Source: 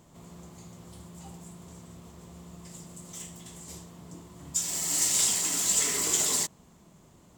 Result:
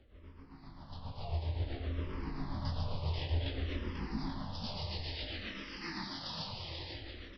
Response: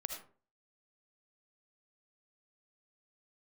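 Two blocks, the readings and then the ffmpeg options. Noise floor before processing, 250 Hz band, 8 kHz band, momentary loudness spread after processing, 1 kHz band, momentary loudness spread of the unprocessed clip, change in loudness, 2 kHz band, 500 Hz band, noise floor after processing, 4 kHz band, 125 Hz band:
-57 dBFS, +1.0 dB, under -35 dB, 12 LU, -1.5 dB, 21 LU, -15.0 dB, -5.0 dB, -2.0 dB, -54 dBFS, -7.0 dB, +8.5 dB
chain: -filter_complex "[0:a]lowshelf=f=120:g=7.5,areverse,acompressor=threshold=-37dB:ratio=6,areverse,alimiter=level_in=11dB:limit=-24dB:level=0:latency=1,volume=-11dB,dynaudnorm=f=440:g=5:m=15dB,tremolo=f=7.5:d=0.6,afreqshift=-90,flanger=delay=18:depth=7.2:speed=1.7,aecho=1:1:490|833|1073|1241|1359:0.631|0.398|0.251|0.158|0.1,aresample=11025,aresample=44100,asplit=2[a][b];[b]afreqshift=-0.56[c];[a][c]amix=inputs=2:normalize=1,volume=2dB"

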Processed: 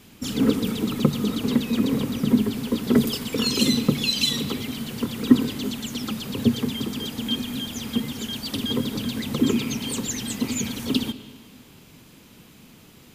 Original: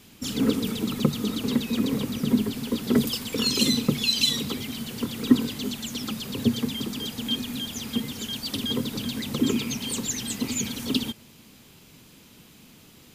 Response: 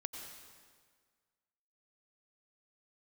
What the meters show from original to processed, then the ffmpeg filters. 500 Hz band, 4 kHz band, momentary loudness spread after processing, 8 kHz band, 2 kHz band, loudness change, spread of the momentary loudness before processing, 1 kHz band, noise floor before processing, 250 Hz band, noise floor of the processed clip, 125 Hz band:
+3.0 dB, 0.0 dB, 9 LU, -0.5 dB, +1.5 dB, +2.0 dB, 9 LU, +3.0 dB, -52 dBFS, +3.0 dB, -50 dBFS, +3.0 dB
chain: -filter_complex "[0:a]asplit=2[a][b];[1:a]atrim=start_sample=2205,lowpass=3.2k[c];[b][c]afir=irnorm=-1:irlink=0,volume=-5dB[d];[a][d]amix=inputs=2:normalize=0"

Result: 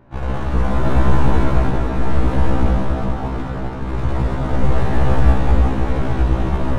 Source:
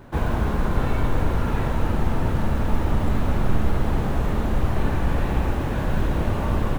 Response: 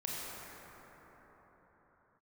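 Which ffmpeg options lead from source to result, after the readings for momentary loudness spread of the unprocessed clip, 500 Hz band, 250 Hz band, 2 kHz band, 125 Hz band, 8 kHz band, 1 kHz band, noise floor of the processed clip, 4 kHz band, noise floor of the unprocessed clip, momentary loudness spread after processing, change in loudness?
1 LU, +4.5 dB, +4.0 dB, +3.0 dB, +5.0 dB, n/a, +4.5 dB, -25 dBFS, +2.0 dB, -25 dBFS, 8 LU, +5.0 dB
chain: -filter_complex "[0:a]aeval=exprs='0.473*(cos(1*acos(clip(val(0)/0.473,-1,1)))-cos(1*PI/2))+0.168*(cos(4*acos(clip(val(0)/0.473,-1,1)))-cos(4*PI/2))':c=same[a];[1:a]atrim=start_sample=2205,afade=t=out:st=0.39:d=0.01,atrim=end_sample=17640,asetrate=22491,aresample=44100[b];[a][b]afir=irnorm=-1:irlink=0,adynamicsmooth=sensitivity=6.5:basefreq=3k,afftfilt=real='re*1.73*eq(mod(b,3),0)':imag='im*1.73*eq(mod(b,3),0)':win_size=2048:overlap=0.75,volume=-3dB"

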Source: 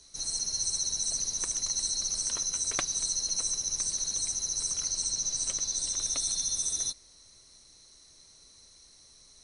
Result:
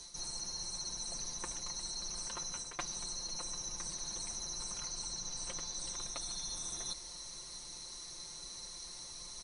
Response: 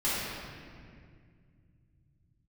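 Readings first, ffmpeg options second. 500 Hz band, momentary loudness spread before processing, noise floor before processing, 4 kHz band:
-2.5 dB, 1 LU, -57 dBFS, -7.5 dB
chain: -filter_complex "[0:a]acrossover=split=3100[a][b];[b]acompressor=threshold=-39dB:ratio=4:attack=1:release=60[c];[a][c]amix=inputs=2:normalize=0,equalizer=f=960:t=o:w=0.48:g=7,aecho=1:1:5.7:0.65,areverse,acompressor=threshold=-46dB:ratio=6,areverse,volume=7dB"

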